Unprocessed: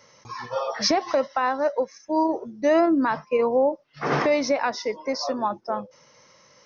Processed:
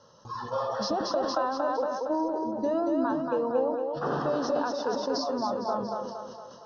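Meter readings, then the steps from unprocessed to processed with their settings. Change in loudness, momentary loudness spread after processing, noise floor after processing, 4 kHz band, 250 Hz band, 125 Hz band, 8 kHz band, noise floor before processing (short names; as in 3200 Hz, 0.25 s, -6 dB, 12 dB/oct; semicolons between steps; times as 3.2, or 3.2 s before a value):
-5.0 dB, 7 LU, -48 dBFS, -7.0 dB, -4.5 dB, -3.5 dB, n/a, -57 dBFS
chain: compressor 4:1, threshold -27 dBFS, peak gain reduction 10 dB; Butterworth band-stop 2200 Hz, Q 1.4; air absorption 140 m; split-band echo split 310 Hz, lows 0.1 s, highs 0.231 s, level -3.5 dB; sustainer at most 41 dB/s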